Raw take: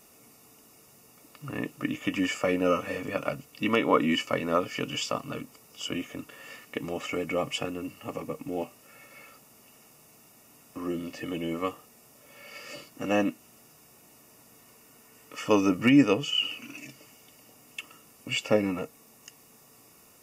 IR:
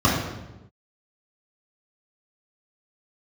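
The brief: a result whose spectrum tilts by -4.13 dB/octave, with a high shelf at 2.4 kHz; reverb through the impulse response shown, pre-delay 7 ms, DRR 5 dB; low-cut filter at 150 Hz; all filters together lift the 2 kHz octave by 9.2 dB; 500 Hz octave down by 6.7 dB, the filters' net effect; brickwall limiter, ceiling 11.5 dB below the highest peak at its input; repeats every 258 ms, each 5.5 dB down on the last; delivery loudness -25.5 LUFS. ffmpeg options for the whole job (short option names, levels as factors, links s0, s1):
-filter_complex "[0:a]highpass=150,equalizer=f=500:t=o:g=-8.5,equalizer=f=2000:t=o:g=7,highshelf=f=2400:g=8.5,alimiter=limit=0.168:level=0:latency=1,aecho=1:1:258|516|774|1032|1290|1548|1806:0.531|0.281|0.149|0.079|0.0419|0.0222|0.0118,asplit=2[s0][s1];[1:a]atrim=start_sample=2205,adelay=7[s2];[s1][s2]afir=irnorm=-1:irlink=0,volume=0.0562[s3];[s0][s3]amix=inputs=2:normalize=0,volume=1.12"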